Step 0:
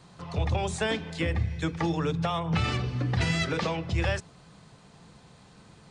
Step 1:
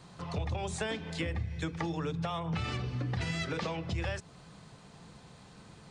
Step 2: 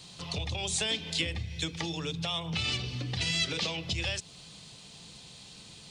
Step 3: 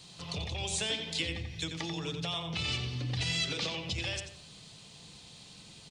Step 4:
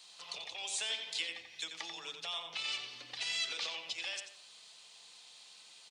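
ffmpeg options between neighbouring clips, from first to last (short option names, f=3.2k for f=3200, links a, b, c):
-af "acompressor=threshold=-33dB:ratio=3"
-af "highshelf=f=2.2k:t=q:w=1.5:g=12,volume=-1.5dB"
-filter_complex "[0:a]asplit=2[a][b];[b]adelay=89,lowpass=f=3.1k:p=1,volume=-5dB,asplit=2[c][d];[d]adelay=89,lowpass=f=3.1k:p=1,volume=0.36,asplit=2[e][f];[f]adelay=89,lowpass=f=3.1k:p=1,volume=0.36,asplit=2[g][h];[h]adelay=89,lowpass=f=3.1k:p=1,volume=0.36[i];[a][c][e][g][i]amix=inputs=5:normalize=0,volume=-3dB"
-af "highpass=790,volume=-3dB"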